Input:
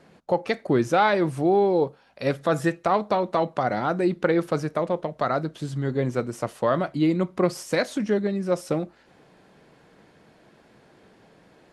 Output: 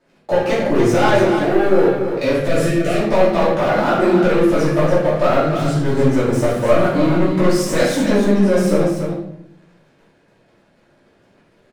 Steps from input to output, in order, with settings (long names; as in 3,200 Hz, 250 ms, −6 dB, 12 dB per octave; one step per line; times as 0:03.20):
0:01.18–0:01.58: bass and treble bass −15 dB, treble −12 dB
0:03.60–0:04.23: high-pass filter 170 Hz 24 dB per octave
leveller curve on the samples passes 3
downward compressor, threshold −16 dBFS, peak gain reduction 5 dB
0:02.46–0:03.00: Butterworth band-reject 950 Hz, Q 1.3
loudspeakers that aren't time-aligned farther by 24 metres −10 dB, 100 metres −7 dB
rectangular room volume 150 cubic metres, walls mixed, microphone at 2.7 metres
level −7.5 dB